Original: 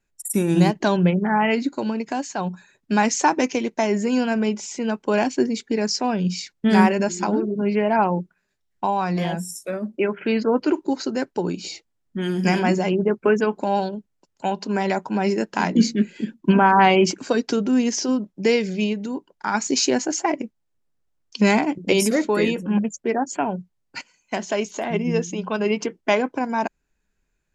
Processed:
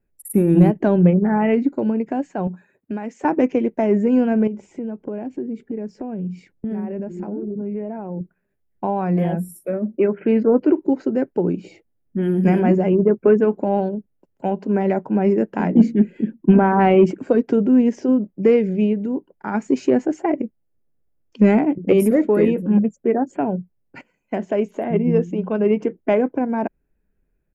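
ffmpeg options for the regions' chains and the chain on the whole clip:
ffmpeg -i in.wav -filter_complex "[0:a]asettb=1/sr,asplit=3[link_01][link_02][link_03];[link_01]atrim=end=2.474[link_04];[link_02]atrim=start=2.47:end=3.25,asetpts=PTS-STARTPTS,afade=type=in:duration=0.004:curve=qsin,afade=type=out:start_time=0.776:duration=0.004:curve=qsin,highpass=frequency=200:poles=1,acompressor=threshold=-28dB:ratio=4:attack=3.2:release=140:knee=1:detection=peak[link_05];[link_03]atrim=start=3.246[link_06];[link_04][link_05]acrossfade=duration=0.004:curve1=hsin:curve2=qsin[link_07];[link_07][link_06]acrossfade=duration=0.004:curve1=qsin:curve2=hsin,asettb=1/sr,asplit=3[link_08][link_09][link_10];[link_08]atrim=end=4.474[link_11];[link_09]atrim=start=4.47:end=8.21,asetpts=PTS-STARTPTS,afade=type=in:duration=0.004:curve=qsin,afade=type=out:start_time=3.736:duration=0.004:curve=qsin,tiltshelf=frequency=890:gain=4,acompressor=threshold=-30dB:ratio=5:attack=3.2:release=140:knee=1:detection=peak[link_12];[link_10]atrim=start=8.206[link_13];[link_11][link_12]acrossfade=duration=0.004:curve1=hsin:curve2=qsin[link_14];[link_14][link_13]acrossfade=duration=0.004:curve1=qsin:curve2=hsin,firequalizer=gain_entry='entry(510,0);entry(980,-11);entry(1900,-10);entry(2900,-16);entry(4100,-28);entry(6500,-28);entry(11000,-6)':delay=0.05:min_phase=1,acontrast=25" out.wav

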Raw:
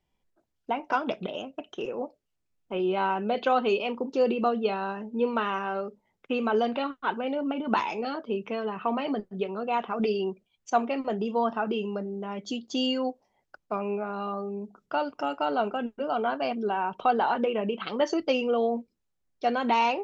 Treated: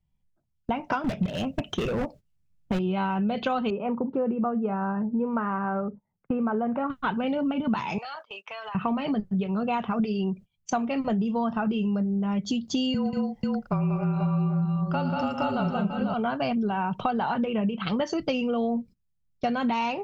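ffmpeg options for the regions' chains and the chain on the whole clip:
ffmpeg -i in.wav -filter_complex "[0:a]asettb=1/sr,asplit=3[link_01][link_02][link_03];[link_01]atrim=end=1.044[link_04];[link_02]atrim=start=1.04:end=2.79,asetpts=PTS-STARTPTS,afade=type=in:duration=0.004:curve=qsin,afade=type=out:start_time=1.746:duration=0.004:curve=qsin,acontrast=62,asoftclip=type=hard:threshold=-26dB[link_05];[link_03]atrim=start=2.786[link_06];[link_04][link_05]acrossfade=duration=0.004:curve1=hsin:curve2=qsin[link_07];[link_07][link_06]acrossfade=duration=0.004:curve1=qsin:curve2=hsin,asettb=1/sr,asplit=3[link_08][link_09][link_10];[link_08]atrim=end=3.704[link_11];[link_09]atrim=start=3.7:end=6.9,asetpts=PTS-STARTPTS,afade=type=in:duration=0.004:curve=qsin,afade=type=out:start_time=3.196:duration=0.004:curve=qsin,lowpass=frequency=1600:width=0.5412,lowpass=frequency=1600:width=1.3066,lowshelf=frequency=140:gain=-10[link_12];[link_10]atrim=start=6.896[link_13];[link_11][link_12]acrossfade=duration=0.004:curve1=hsin:curve2=qsin[link_14];[link_14][link_13]acrossfade=duration=0.004:curve1=qsin:curve2=hsin,asettb=1/sr,asplit=3[link_15][link_16][link_17];[link_15]atrim=end=7.984[link_18];[link_16]atrim=start=7.98:end=8.75,asetpts=PTS-STARTPTS,afade=type=in:duration=0.004:curve=qsin,afade=type=out:start_time=0.766:duration=0.004:curve=qsin,highpass=frequency=740:width=0.5412,highpass=frequency=740:width=1.3066,acompressor=threshold=-39dB:ratio=12:attack=3.2:release=140:knee=1:detection=peak[link_19];[link_17]atrim=start=8.746[link_20];[link_18][link_19]acrossfade=duration=0.004:curve1=hsin:curve2=qsin[link_21];[link_21][link_20]acrossfade=duration=0.004:curve1=qsin:curve2=hsin,asettb=1/sr,asplit=3[link_22][link_23][link_24];[link_22]atrim=end=12.944[link_25];[link_23]atrim=start=12.94:end=16.14,asetpts=PTS-STARTPTS,afade=type=in:duration=0.004:curve=qsin,afade=type=out:start_time=3.196:duration=0.004:curve=qsin,bandreject=frequency=680:width=14,afreqshift=-33,aecho=1:1:82|114|186|225|490:0.112|0.282|0.631|0.355|0.562,atrim=end_sample=141120[link_26];[link_24]atrim=start=16.136[link_27];[link_25][link_26]acrossfade=duration=0.004:curve1=hsin:curve2=qsin[link_28];[link_28][link_27]acrossfade=duration=0.004:curve1=qsin:curve2=hsin,agate=range=-16dB:threshold=-47dB:ratio=16:detection=peak,lowshelf=frequency=230:width_type=q:width=1.5:gain=14,acompressor=threshold=-31dB:ratio=6,volume=7dB" out.wav

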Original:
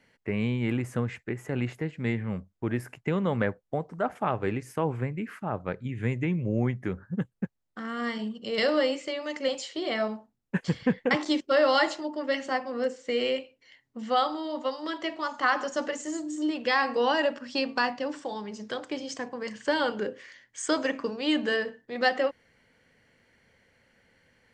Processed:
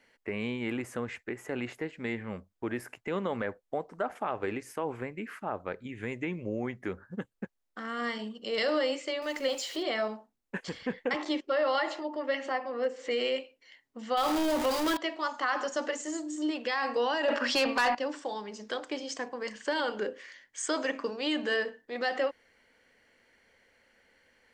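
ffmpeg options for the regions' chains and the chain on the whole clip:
ffmpeg -i in.wav -filter_complex "[0:a]asettb=1/sr,asplit=3[link_01][link_02][link_03];[link_01]atrim=end=9.224[link_04];[link_02]atrim=start=9.22:end=9.83,asetpts=PTS-STARTPTS,afade=type=in:duration=0.004:curve=qsin,afade=type=out:start_time=0.606:duration=0.004:curve=qsin,aeval=exprs='val(0)+0.5*0.00631*sgn(val(0))':channel_layout=same,acompressor=mode=upward:threshold=-36dB:ratio=2.5:attack=3.2:release=140:knee=2.83:detection=peak[link_05];[link_03]atrim=start=9.826[link_06];[link_04][link_05]acrossfade=duration=0.004:curve1=hsin:curve2=qsin[link_07];[link_07][link_06]acrossfade=duration=0.004:curve1=qsin:curve2=hsin,asettb=1/sr,asplit=3[link_08][link_09][link_10];[link_08]atrim=end=11.164[link_11];[link_09]atrim=start=11.16:end=13.11,asetpts=PTS-STARTPTS,afade=type=in:duration=0.004:curve=qsin,afade=type=out:start_time=1.946:duration=0.004:curve=qsin,bass=frequency=250:gain=-6,treble=frequency=4000:gain=-11,acompressor=mode=upward:threshold=-31dB:ratio=2.5:attack=3.2:release=140:knee=2.83:detection=peak,bandreject=frequency=1500:width=15[link_12];[link_10]atrim=start=13.106[link_13];[link_11][link_12]acrossfade=duration=0.004:curve1=hsin:curve2=qsin[link_14];[link_14][link_13]acrossfade=duration=0.004:curve1=qsin:curve2=hsin,asettb=1/sr,asplit=3[link_15][link_16][link_17];[link_15]atrim=end=14.174[link_18];[link_16]atrim=start=14.17:end=14.97,asetpts=PTS-STARTPTS,afade=type=in:duration=0.004:curve=qsin,afade=type=out:start_time=0.796:duration=0.004:curve=qsin,aeval=exprs='val(0)+0.5*0.0422*sgn(val(0))':channel_layout=same,lowshelf=frequency=270:gain=7[link_19];[link_17]atrim=start=14.966[link_20];[link_18][link_19]acrossfade=duration=0.004:curve1=hsin:curve2=qsin[link_21];[link_21][link_20]acrossfade=duration=0.004:curve1=qsin:curve2=hsin,asettb=1/sr,asplit=3[link_22][link_23][link_24];[link_22]atrim=end=17.284[link_25];[link_23]atrim=start=17.28:end=17.95,asetpts=PTS-STARTPTS,afade=type=in:duration=0.004:curve=qsin,afade=type=out:start_time=0.666:duration=0.004:curve=qsin,highshelf=frequency=4500:gain=-8.5,acontrast=73,asplit=2[link_26][link_27];[link_27]highpass=frequency=720:poles=1,volume=19dB,asoftclip=type=tanh:threshold=-7dB[link_28];[link_26][link_28]amix=inputs=2:normalize=0,lowpass=frequency=7500:poles=1,volume=-6dB[link_29];[link_24]atrim=start=17.946[link_30];[link_25][link_29]acrossfade=duration=0.004:curve1=hsin:curve2=qsin[link_31];[link_31][link_30]acrossfade=duration=0.004:curve1=qsin:curve2=hsin,equalizer=frequency=62:width=0.87:gain=-5,alimiter=limit=-19.5dB:level=0:latency=1:release=50,equalizer=frequency=140:width=1.4:gain=-14" out.wav

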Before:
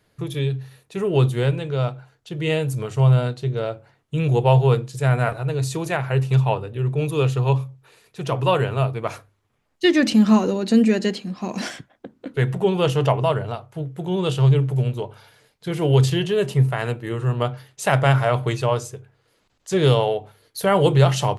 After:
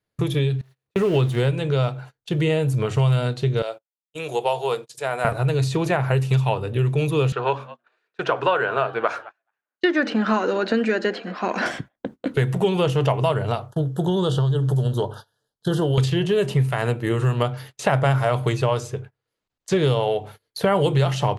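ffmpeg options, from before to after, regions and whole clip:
ffmpeg -i in.wav -filter_complex "[0:a]asettb=1/sr,asplit=3[link_01][link_02][link_03];[link_01]atrim=end=0.614[link_04];[link_02]atrim=start=0.61:end=1.4,asetpts=PTS-STARTPTS,afade=type=in:duration=0.004:curve=qsin,afade=type=out:start_time=0.786:duration=0.004:curve=qsin,aeval=exprs='val(0)+0.5*0.02*sgn(val(0))':channel_layout=same,agate=range=-26dB:threshold=-29dB:ratio=16:release=100:detection=peak,highshelf=frequency=4500:gain=-10.5[link_05];[link_03]atrim=start=1.396[link_06];[link_04][link_05]acrossfade=duration=0.004:curve1=hsin:curve2=qsin[link_07];[link_07][link_06]acrossfade=duration=0.004:curve1=qsin:curve2=hsin,asettb=1/sr,asplit=3[link_08][link_09][link_10];[link_08]atrim=end=3.624[link_11];[link_09]atrim=start=3.62:end=5.25,asetpts=PTS-STARTPTS,afade=type=in:duration=0.004:curve=qsin,afade=type=out:start_time=1.626:duration=0.004:curve=qsin,highpass=720,equalizer=frequency=1600:width=0.56:gain=-8,agate=range=-26dB:threshold=-50dB:ratio=16:release=100:detection=peak[link_12];[link_10]atrim=start=5.246[link_13];[link_11][link_12]acrossfade=duration=0.004:curve1=hsin:curve2=qsin[link_14];[link_14][link_13]acrossfade=duration=0.004:curve1=qsin:curve2=hsin,asettb=1/sr,asplit=3[link_15][link_16][link_17];[link_15]atrim=end=7.324[link_18];[link_16]atrim=start=7.32:end=11.66,asetpts=PTS-STARTPTS,afade=type=in:duration=0.004:curve=qsin,afade=type=out:start_time=4.336:duration=0.004:curve=qsin,highpass=390,lowpass=3500,equalizer=frequency=1500:width=3.9:gain=12,asplit=3[link_19][link_20][link_21];[link_20]adelay=214,afreqshift=110,volume=-24dB[link_22];[link_21]adelay=428,afreqshift=220,volume=-33.1dB[link_23];[link_19][link_22][link_23]amix=inputs=3:normalize=0,atrim=end_sample=191394[link_24];[link_17]atrim=start=11.656[link_25];[link_18][link_24]acrossfade=duration=0.004:curve1=hsin:curve2=qsin[link_26];[link_26][link_25]acrossfade=duration=0.004:curve1=qsin:curve2=hsin,asettb=1/sr,asplit=3[link_27][link_28][link_29];[link_27]atrim=end=13.684[link_30];[link_28]atrim=start=13.68:end=15.98,asetpts=PTS-STARTPTS,afade=type=in:duration=0.004:curve=qsin,afade=type=out:start_time=2.296:duration=0.004:curve=qsin,asuperstop=centerf=2300:order=8:qfactor=1.8,acompressor=threshold=-21dB:ratio=4:attack=3.2:release=140:knee=1:detection=peak[link_31];[link_29]atrim=start=15.976[link_32];[link_30][link_31]acrossfade=duration=0.004:curve1=hsin:curve2=qsin[link_33];[link_33][link_32]acrossfade=duration=0.004:curve1=qsin:curve2=hsin,agate=range=-27dB:threshold=-43dB:ratio=16:detection=peak,acrossover=split=1600|4300[link_34][link_35][link_36];[link_34]acompressor=threshold=-27dB:ratio=4[link_37];[link_35]acompressor=threshold=-43dB:ratio=4[link_38];[link_36]acompressor=threshold=-53dB:ratio=4[link_39];[link_37][link_38][link_39]amix=inputs=3:normalize=0,volume=8.5dB" out.wav

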